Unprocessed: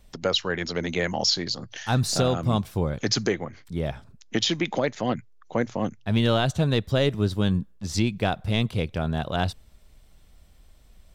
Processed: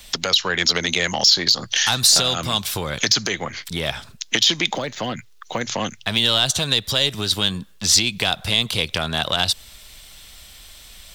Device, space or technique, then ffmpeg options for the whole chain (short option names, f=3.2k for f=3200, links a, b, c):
mastering chain: -filter_complex "[0:a]equalizer=f=3.5k:t=o:w=0.77:g=4,acrossover=split=220|1500|3300[a][b][c][d];[a]acompressor=threshold=-29dB:ratio=4[e];[b]acompressor=threshold=-28dB:ratio=4[f];[c]acompressor=threshold=-43dB:ratio=4[g];[d]acompressor=threshold=-29dB:ratio=4[h];[e][f][g][h]amix=inputs=4:normalize=0,acompressor=threshold=-30dB:ratio=2.5,asoftclip=type=tanh:threshold=-20dB,tiltshelf=f=970:g=-9.5,alimiter=level_in=17dB:limit=-1dB:release=50:level=0:latency=1,asettb=1/sr,asplit=3[i][j][k];[i]atrim=end=4.734[l];[j]atrim=start=4.73:end=5.61,asetpts=PTS-STARTPTS,afade=t=in:d=0.004:c=qsin,afade=t=out:st=0.876:d=0.004:c=qsin,deesser=0.75[m];[k]atrim=start=5.606[n];[l][m]acrossfade=d=0.004:c1=hsin:c2=qsin[o];[o][n]acrossfade=d=0.004:c1=qsin:c2=hsin,volume=-3.5dB"